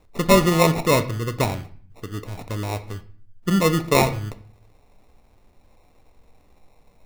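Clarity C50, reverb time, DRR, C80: 14.5 dB, 0.45 s, 9.0 dB, 18.0 dB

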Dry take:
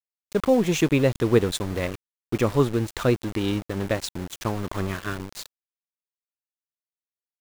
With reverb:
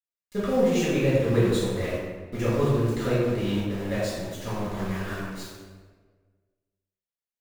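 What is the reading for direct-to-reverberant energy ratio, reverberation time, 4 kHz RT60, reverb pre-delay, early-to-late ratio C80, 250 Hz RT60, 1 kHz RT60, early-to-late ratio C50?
-10.0 dB, 1.5 s, 0.95 s, 4 ms, 0.5 dB, 1.6 s, 1.4 s, -2.0 dB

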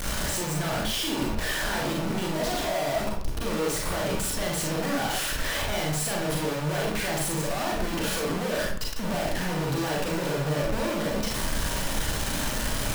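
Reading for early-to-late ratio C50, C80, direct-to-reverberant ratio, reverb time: 2.0 dB, 6.5 dB, -2.5 dB, 0.55 s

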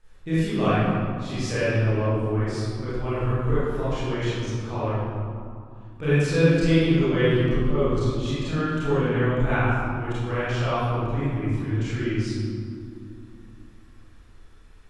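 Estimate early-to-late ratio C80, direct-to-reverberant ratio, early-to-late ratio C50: -2.0 dB, -12.5 dB, -5.5 dB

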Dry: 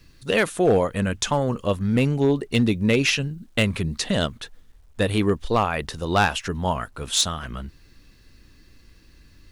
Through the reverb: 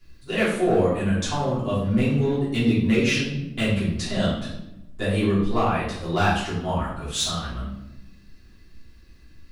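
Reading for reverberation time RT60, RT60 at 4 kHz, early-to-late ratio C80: 0.95 s, 0.65 s, 6.0 dB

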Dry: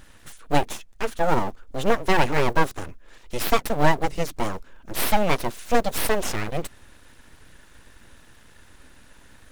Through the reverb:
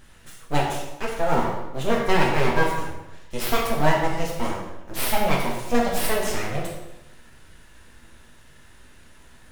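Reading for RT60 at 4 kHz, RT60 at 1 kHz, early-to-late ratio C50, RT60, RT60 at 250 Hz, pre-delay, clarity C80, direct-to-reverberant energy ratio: 0.75 s, 0.95 s, 3.0 dB, 0.95 s, 1.0 s, 6 ms, 5.5 dB, -2.5 dB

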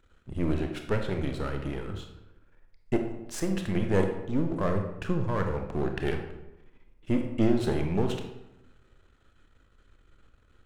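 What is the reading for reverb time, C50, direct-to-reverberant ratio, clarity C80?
0.95 s, 6.5 dB, 4.0 dB, 9.0 dB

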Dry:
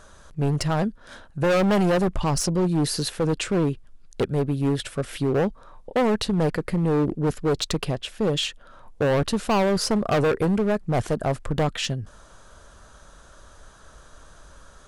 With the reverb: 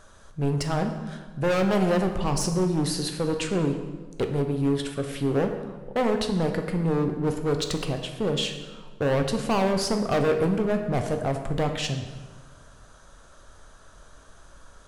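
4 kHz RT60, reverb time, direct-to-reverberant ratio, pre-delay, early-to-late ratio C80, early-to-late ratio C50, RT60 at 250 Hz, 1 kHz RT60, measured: 1.0 s, 1.4 s, 5.0 dB, 7 ms, 9.0 dB, 7.5 dB, 1.7 s, 1.3 s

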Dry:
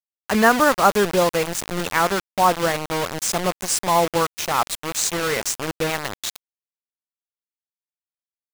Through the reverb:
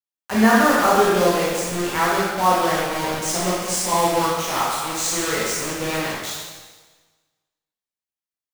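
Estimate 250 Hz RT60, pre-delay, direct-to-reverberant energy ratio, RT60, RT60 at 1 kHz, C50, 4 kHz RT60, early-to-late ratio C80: 1.3 s, 8 ms, -7.0 dB, 1.3 s, 1.3 s, -1.5 dB, 1.3 s, 1.0 dB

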